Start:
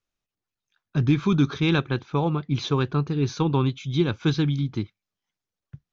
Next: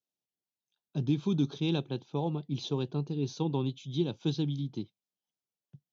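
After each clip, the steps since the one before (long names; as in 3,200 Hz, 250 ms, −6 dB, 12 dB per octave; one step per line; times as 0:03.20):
high-pass filter 130 Hz 24 dB per octave
flat-topped bell 1,600 Hz −15 dB 1.3 octaves
level −7.5 dB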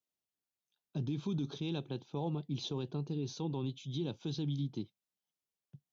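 brickwall limiter −26.5 dBFS, peak gain reduction 9 dB
level −1.5 dB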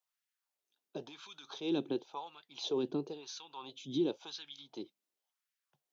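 auto-filter high-pass sine 0.95 Hz 270–1,700 Hz
level +1.5 dB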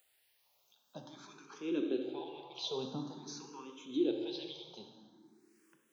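upward compression, threshold −55 dBFS
dense smooth reverb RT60 2.1 s, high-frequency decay 0.65×, DRR 2.5 dB
frequency shifter mixed with the dry sound +0.49 Hz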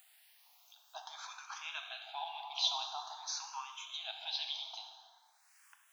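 linear-phase brick-wall high-pass 640 Hz
level +8.5 dB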